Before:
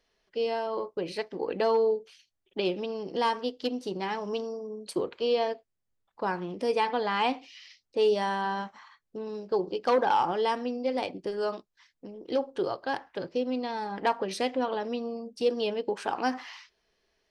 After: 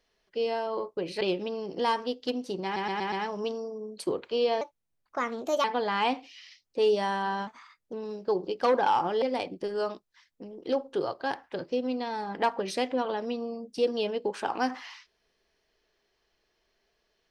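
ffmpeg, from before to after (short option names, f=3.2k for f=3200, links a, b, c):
-filter_complex "[0:a]asplit=11[a][b][c][d][e][f][g][h][i][j][k];[a]atrim=end=1.212[l];[b]atrim=start=2.578:end=4.132[m];[c]atrim=start=4.008:end=4.132[n];[d]atrim=start=4.008:end=4.132[o];[e]atrim=start=4.008:end=4.132[p];[f]atrim=start=4.008:end=5.504[q];[g]atrim=start=5.5:end=6.83,asetpts=PTS-STARTPTS,asetrate=56889,aresample=44100,atrim=end_sample=45467,asetpts=PTS-STARTPTS[r];[h]atrim=start=6.826:end=8.664[s];[i]atrim=start=8.66:end=9.17,asetpts=PTS-STARTPTS,asetrate=48951,aresample=44100,atrim=end_sample=20262,asetpts=PTS-STARTPTS[t];[j]atrim=start=9.166:end=10.462[u];[k]atrim=start=10.848[v];[l][m]acrossfade=d=0.004:c1=hsin:c2=hsin[w];[w][n]acrossfade=d=0.004:c1=hsin:c2=hsin[x];[x][o]acrossfade=d=0.004:c1=hsin:c2=hsin[y];[y][p]acrossfade=d=0.004:c1=hsin:c2=hsin[z];[z][q]acrossfade=d=0.004:c1=hsin:c2=hsin[aa];[aa][r]acrossfade=d=0.004:c1=hsin:c2=hsin[ab];[ab][s]acrossfade=d=0.004:c1=hsin:c2=hsin[ac];[ac][t]acrossfade=d=0.004:c1=hsin:c2=hsin[ad];[ad][u]acrossfade=d=0.004:c1=hsin:c2=hsin[ae];[ae][v]acrossfade=d=0.004:c1=hsin:c2=hsin"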